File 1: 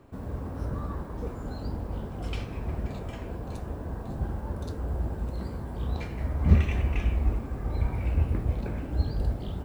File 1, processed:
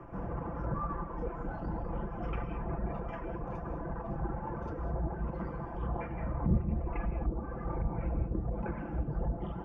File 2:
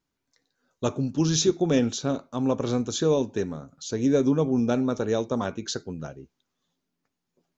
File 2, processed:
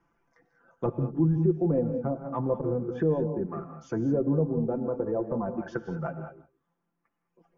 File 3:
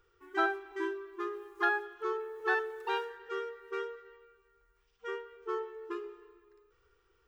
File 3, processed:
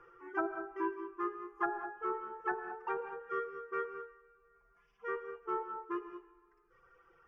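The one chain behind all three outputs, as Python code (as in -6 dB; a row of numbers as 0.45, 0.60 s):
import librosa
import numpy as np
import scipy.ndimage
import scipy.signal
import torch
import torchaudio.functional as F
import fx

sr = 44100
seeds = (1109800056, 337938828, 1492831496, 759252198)

p1 = fx.dereverb_blind(x, sr, rt60_s=1.9)
p2 = fx.peak_eq(p1, sr, hz=1100.0, db=7.5, octaves=1.5)
p3 = p2 + fx.echo_single(p2, sr, ms=164, db=-21.5, dry=0)
p4 = fx.transient(p3, sr, attack_db=-6, sustain_db=1)
p5 = np.sign(p4) * np.maximum(np.abs(p4) - 10.0 ** (-42.5 / 20.0), 0.0)
p6 = p4 + (p5 * 10.0 ** (-7.0 / 20.0))
p7 = np.convolve(p6, np.full(11, 1.0 / 11))[:len(p6)]
p8 = fx.env_lowpass_down(p7, sr, base_hz=470.0, full_db=-23.0)
p9 = p8 + 0.66 * np.pad(p8, (int(5.9 * sr / 1000.0), 0))[:len(p8)]
p10 = fx.rev_gated(p9, sr, seeds[0], gate_ms=230, shape='rising', drr_db=8.5)
p11 = fx.band_squash(p10, sr, depth_pct=40)
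y = p11 * 10.0 ** (-3.0 / 20.0)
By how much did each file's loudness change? -5.5, -3.5, -3.5 LU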